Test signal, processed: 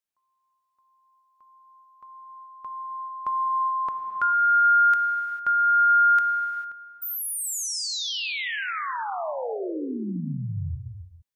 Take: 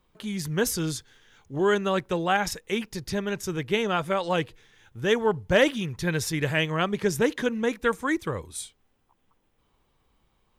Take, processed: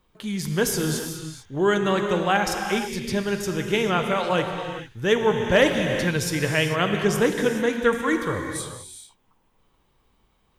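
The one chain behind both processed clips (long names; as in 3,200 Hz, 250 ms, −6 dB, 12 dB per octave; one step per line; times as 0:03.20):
reverb whose tail is shaped and stops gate 470 ms flat, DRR 4 dB
level +2 dB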